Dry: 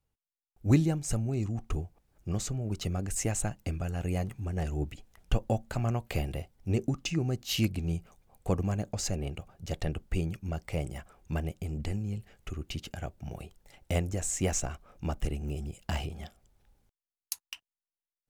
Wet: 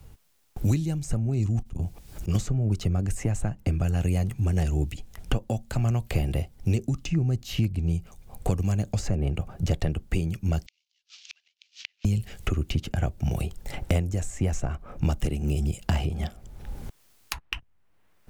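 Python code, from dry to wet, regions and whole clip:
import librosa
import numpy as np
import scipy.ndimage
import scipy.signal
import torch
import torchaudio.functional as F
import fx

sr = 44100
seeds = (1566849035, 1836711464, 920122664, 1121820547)

y = fx.chain(x, sr, fx.auto_swell(attack_ms=156.0),
    fx.transformer_sat(knee_hz=300.0), at=(1.62, 2.35))
y = fx.chain(y, sr, fx.cvsd(bps=32000),
    fx.cheby1_highpass(hz=2900.0, order=3),
    fx.gate_flip(shuts_db=-47.0, range_db=-40), at=(10.66, 12.05))
y = fx.rider(y, sr, range_db=4, speed_s=0.5)
y = fx.low_shelf(y, sr, hz=250.0, db=8.5)
y = fx.band_squash(y, sr, depth_pct=100)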